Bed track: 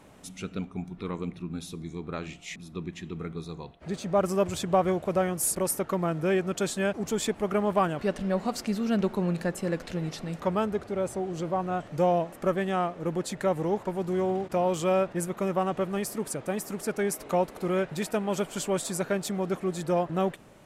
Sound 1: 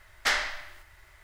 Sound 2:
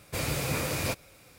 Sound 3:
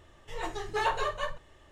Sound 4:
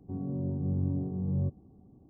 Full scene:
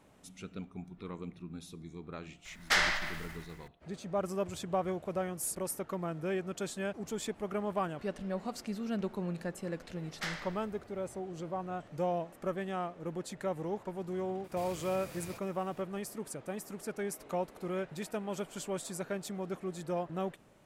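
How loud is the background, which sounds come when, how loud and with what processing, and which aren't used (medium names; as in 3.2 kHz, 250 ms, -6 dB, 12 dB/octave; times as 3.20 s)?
bed track -9 dB
2.45 s: add 1 -2 dB + decay stretcher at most 38 dB/s
9.96 s: add 1 -13 dB
14.44 s: add 2 -8.5 dB + compression 4:1, threshold -37 dBFS
not used: 3, 4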